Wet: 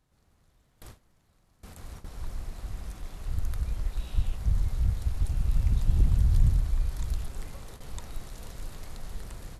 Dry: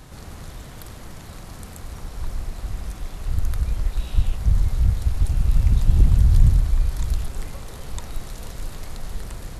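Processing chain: gate with hold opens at -24 dBFS; gain -7.5 dB

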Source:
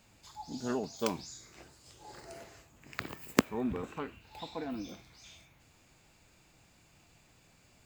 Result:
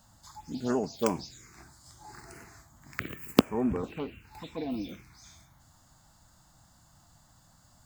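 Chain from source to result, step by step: envelope phaser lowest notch 390 Hz, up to 3900 Hz, full sweep at -30 dBFS; gain +5.5 dB

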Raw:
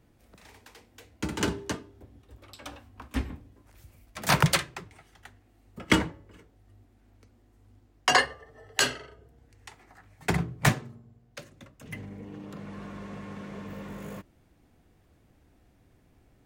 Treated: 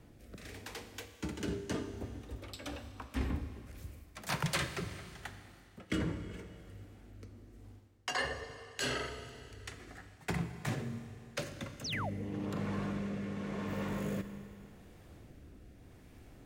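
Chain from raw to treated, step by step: reverse; compressor 5:1, threshold -41 dBFS, peak gain reduction 22.5 dB; reverse; rotary speaker horn 0.85 Hz; Schroeder reverb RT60 2.6 s, combs from 27 ms, DRR 9.5 dB; painted sound fall, 11.84–12.1, 500–6600 Hz -47 dBFS; gain +8 dB

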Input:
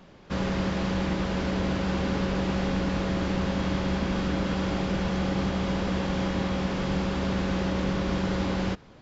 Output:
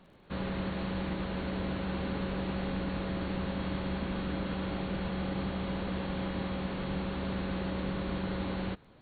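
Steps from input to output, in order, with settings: brick-wall FIR low-pass 4500 Hz; crackle 68/s -53 dBFS, from 2.64 s 15/s; gain -7 dB

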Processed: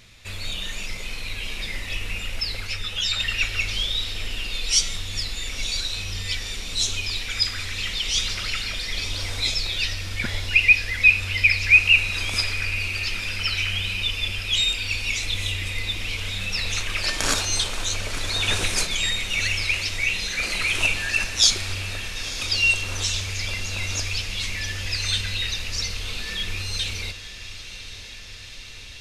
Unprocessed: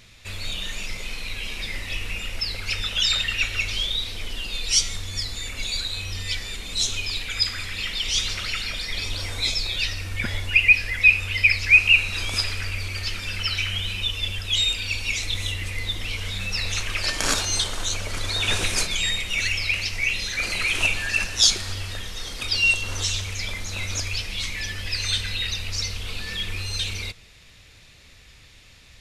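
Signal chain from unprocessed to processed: diffused feedback echo 0.997 s, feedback 74%, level -13.5 dB; 2.67–3.2 ensemble effect

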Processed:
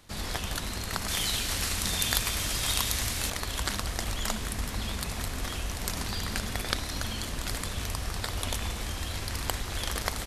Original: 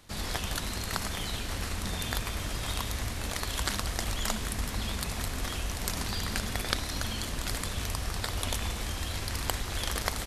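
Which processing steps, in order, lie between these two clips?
1.08–3.3 high shelf 2200 Hz +10.5 dB

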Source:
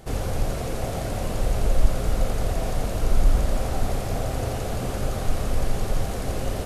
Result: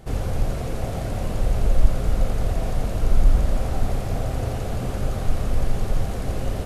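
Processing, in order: tone controls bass +4 dB, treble -3 dB; gain -1.5 dB

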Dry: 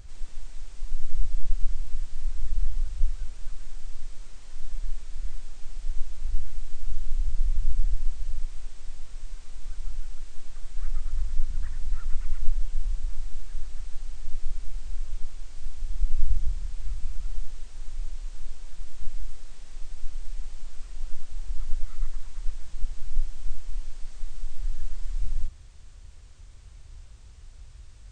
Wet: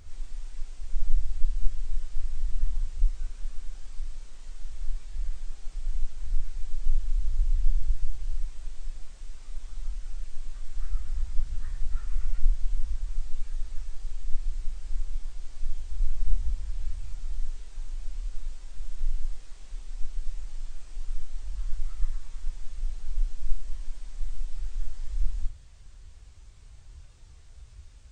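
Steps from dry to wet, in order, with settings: phase scrambler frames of 0.1 s; gain -2 dB

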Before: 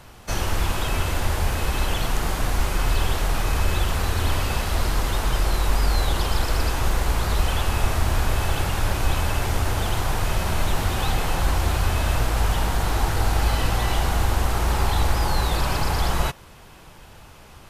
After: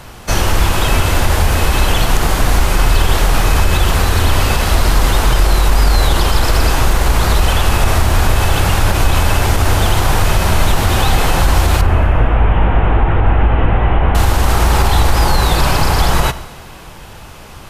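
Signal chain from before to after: 11.81–14.15 delta modulation 16 kbps, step -36.5 dBFS; reverb RT60 1.6 s, pre-delay 7 ms, DRR 14.5 dB; maximiser +12 dB; gain -1 dB

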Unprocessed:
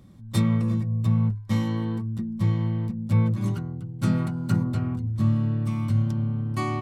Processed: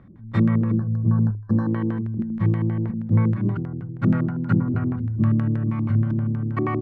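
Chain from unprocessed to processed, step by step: LFO low-pass square 6.3 Hz 350–1700 Hz; spectral gain 0.76–1.68, 1800–4000 Hz -27 dB; gain +1.5 dB

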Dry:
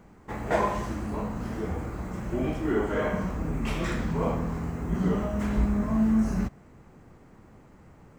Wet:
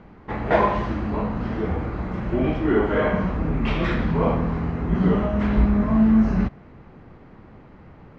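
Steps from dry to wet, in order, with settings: LPF 4100 Hz 24 dB/oct; gain +6.5 dB

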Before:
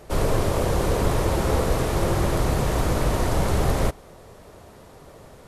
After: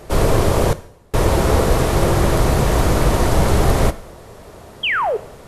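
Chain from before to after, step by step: 0.72–1.14 flipped gate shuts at -16 dBFS, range -38 dB; 4.83–5.17 painted sound fall 390–3400 Hz -25 dBFS; two-slope reverb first 0.66 s, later 2.2 s, from -24 dB, DRR 14 dB; gain +6.5 dB

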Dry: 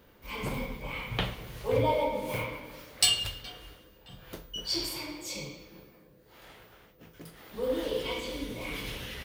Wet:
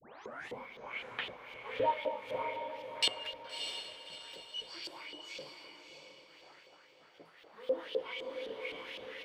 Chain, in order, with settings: tape start at the beginning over 0.58 s; LFO band-pass saw up 3.9 Hz 440–3600 Hz; diffused feedback echo 0.635 s, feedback 41%, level -6.5 dB

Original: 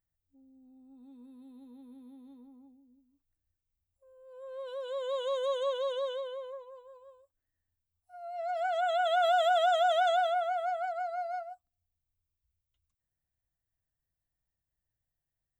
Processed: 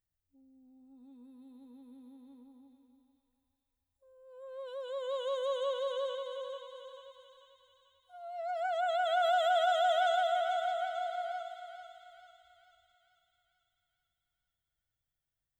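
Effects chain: thinning echo 0.441 s, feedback 57%, high-pass 890 Hz, level -6.5 dB; gain -2.5 dB

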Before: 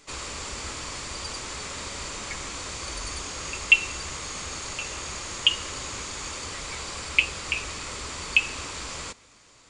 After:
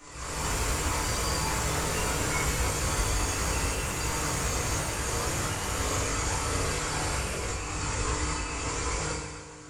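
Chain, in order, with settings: auto swell 0.322 s; in parallel at -0.5 dB: limiter -32.5 dBFS, peak gain reduction 11 dB; on the sum: bell 3800 Hz -9.5 dB 1.3 oct; on a send: reverse echo 0.203 s -12.5 dB; on the sum: FDN reverb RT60 1.6 s, low-frequency decay 0.85×, high-frequency decay 0.85×, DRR -5.5 dB; chorus voices 6, 0.35 Hz, delay 20 ms, depth 1.2 ms; echoes that change speed 0.109 s, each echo +4 st, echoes 3, each echo -6 dB

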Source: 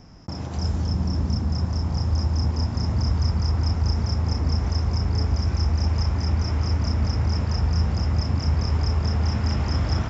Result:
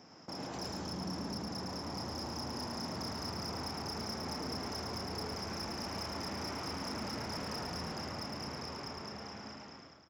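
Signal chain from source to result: ending faded out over 2.50 s; HPF 290 Hz 12 dB/oct; soft clip -32 dBFS, distortion -13 dB; echo 0.109 s -4 dB; gain -3.5 dB

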